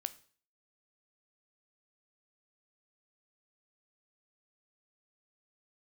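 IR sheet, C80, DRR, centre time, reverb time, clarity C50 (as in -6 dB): 22.0 dB, 12.0 dB, 3 ms, 0.45 s, 18.0 dB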